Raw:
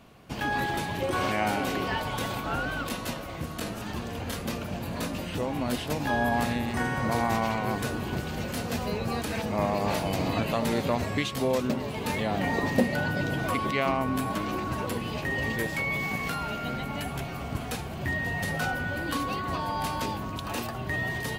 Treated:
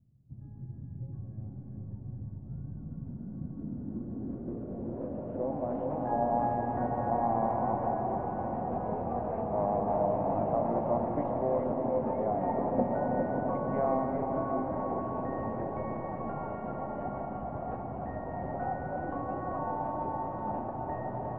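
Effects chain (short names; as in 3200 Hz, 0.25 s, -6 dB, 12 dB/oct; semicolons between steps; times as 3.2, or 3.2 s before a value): tracing distortion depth 0.11 ms; LPF 1900 Hz 12 dB/oct; low shelf 120 Hz -6 dB; notch 450 Hz, Q 12; diffused feedback echo 0.687 s, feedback 56%, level -6 dB; low-pass sweep 120 Hz -> 750 Hz, 2.37–5.78; on a send at -2 dB: reverb, pre-delay 3 ms; on the sum: gain -7.5 dB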